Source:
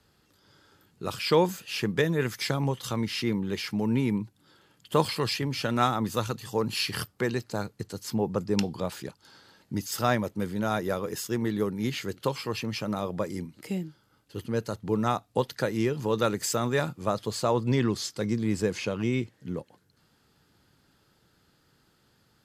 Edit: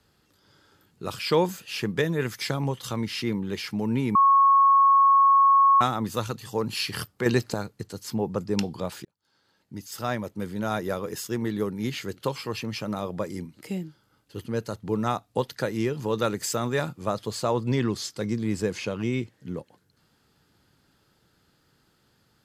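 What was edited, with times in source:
4.15–5.81 bleep 1100 Hz -14 dBFS
7.26–7.54 gain +7.5 dB
9.05–10.72 fade in

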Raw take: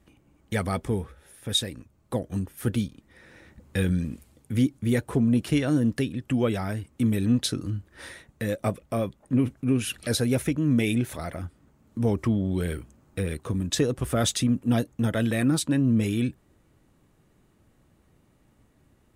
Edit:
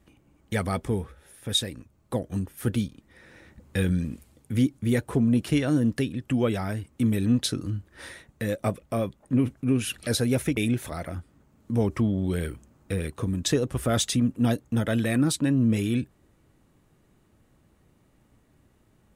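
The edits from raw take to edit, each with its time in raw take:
10.57–10.84 cut

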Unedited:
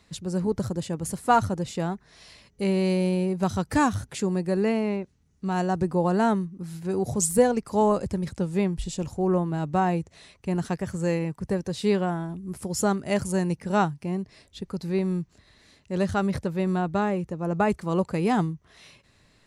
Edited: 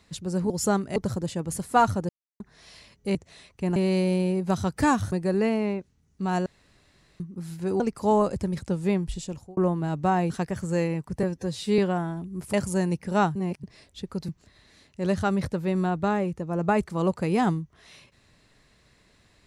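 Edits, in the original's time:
1.63–1.94 mute
4.05–4.35 cut
5.69–6.43 room tone
7.03–7.5 cut
8.61–9.27 fade out equal-power
10–10.61 move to 2.69
11.54–11.91 stretch 1.5×
12.66–13.12 move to 0.5
13.94–14.22 reverse
14.87–15.2 cut

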